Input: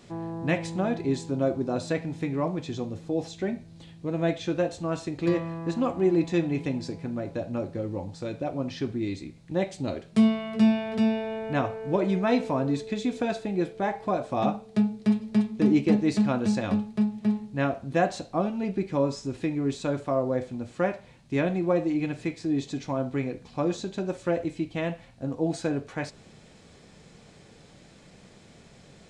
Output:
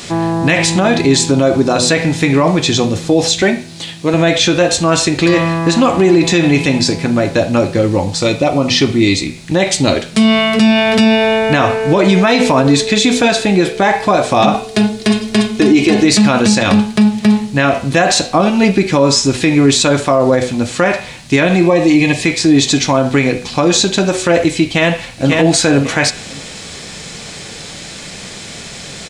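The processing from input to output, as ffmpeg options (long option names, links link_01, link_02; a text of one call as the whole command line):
ffmpeg -i in.wav -filter_complex "[0:a]asettb=1/sr,asplit=3[link_01][link_02][link_03];[link_01]atrim=end=3.424[link_04];[link_02]atrim=start=3.42:end=4.14,asetpts=PTS-STARTPTS,afade=type=in:duration=0.004:curve=qsin,afade=type=out:start_time=0.716:duration=0.004:curve=qsin,highpass=frequency=230:poles=1[link_05];[link_03]atrim=start=4.136[link_06];[link_04][link_05]acrossfade=duration=0.004:curve1=hsin:curve2=qsin[link_07];[link_07][link_06]acrossfade=duration=0.004:curve1=qsin:curve2=hsin,asettb=1/sr,asplit=3[link_08][link_09][link_10];[link_08]atrim=end=8.184[link_11];[link_09]atrim=start=8.18:end=9.27,asetpts=PTS-STARTPTS,afade=type=in:duration=0.004:curve=qsin,afade=type=out:start_time=1.086:duration=0.004:curve=qsin,asuperstop=centerf=1600:order=4:qfactor=6.4[link_12];[link_10]atrim=start=9.266[link_13];[link_11][link_12]acrossfade=duration=0.004:curve1=hsin:curve2=qsin[link_14];[link_14][link_13]acrossfade=duration=0.004:curve1=qsin:curve2=hsin,asettb=1/sr,asplit=3[link_15][link_16][link_17];[link_15]atrim=end=14.544[link_18];[link_16]atrim=start=14.54:end=16.05,asetpts=PTS-STARTPTS,afade=type=in:duration=0.004:curve=qsin,afade=type=out:start_time=1.506:duration=0.004:curve=qsin,aecho=1:1:2.8:0.65,atrim=end_sample=66591[link_19];[link_17]atrim=start=16.046[link_20];[link_18][link_19]acrossfade=duration=0.004:curve1=hsin:curve2=qsin[link_21];[link_21][link_20]acrossfade=duration=0.004:curve1=qsin:curve2=hsin,asettb=1/sr,asplit=3[link_22][link_23][link_24];[link_22]atrim=end=21.664[link_25];[link_23]atrim=start=21.66:end=22.25,asetpts=PTS-STARTPTS,afade=type=in:duration=0.004:curve=qsin,afade=type=out:start_time=0.586:duration=0.004:curve=qsin,asuperstop=centerf=1400:order=8:qfactor=3.7[link_26];[link_24]atrim=start=22.246[link_27];[link_25][link_26]acrossfade=duration=0.004:curve1=hsin:curve2=qsin[link_28];[link_28][link_27]acrossfade=duration=0.004:curve1=qsin:curve2=hsin,asplit=2[link_29][link_30];[link_30]afade=type=in:start_time=24.65:duration=0.01,afade=type=out:start_time=25.38:duration=0.01,aecho=0:1:540|1080|1620:0.530884|0.0796327|0.0119449[link_31];[link_29][link_31]amix=inputs=2:normalize=0,tiltshelf=frequency=1400:gain=-6.5,bandreject=frequency=123.6:width_type=h:width=4,bandreject=frequency=247.2:width_type=h:width=4,bandreject=frequency=370.8:width_type=h:width=4,bandreject=frequency=494.4:width_type=h:width=4,bandreject=frequency=618:width_type=h:width=4,bandreject=frequency=741.6:width_type=h:width=4,bandreject=frequency=865.2:width_type=h:width=4,bandreject=frequency=988.8:width_type=h:width=4,bandreject=frequency=1112.4:width_type=h:width=4,bandreject=frequency=1236:width_type=h:width=4,bandreject=frequency=1359.6:width_type=h:width=4,bandreject=frequency=1483.2:width_type=h:width=4,bandreject=frequency=1606.8:width_type=h:width=4,bandreject=frequency=1730.4:width_type=h:width=4,bandreject=frequency=1854:width_type=h:width=4,bandreject=frequency=1977.6:width_type=h:width=4,bandreject=frequency=2101.2:width_type=h:width=4,bandreject=frequency=2224.8:width_type=h:width=4,bandreject=frequency=2348.4:width_type=h:width=4,bandreject=frequency=2472:width_type=h:width=4,bandreject=frequency=2595.6:width_type=h:width=4,bandreject=frequency=2719.2:width_type=h:width=4,bandreject=frequency=2842.8:width_type=h:width=4,bandreject=frequency=2966.4:width_type=h:width=4,bandreject=frequency=3090:width_type=h:width=4,bandreject=frequency=3213.6:width_type=h:width=4,bandreject=frequency=3337.2:width_type=h:width=4,bandreject=frequency=3460.8:width_type=h:width=4,bandreject=frequency=3584.4:width_type=h:width=4,bandreject=frequency=3708:width_type=h:width=4,bandreject=frequency=3831.6:width_type=h:width=4,alimiter=level_in=25.5dB:limit=-1dB:release=50:level=0:latency=1,volume=-1dB" out.wav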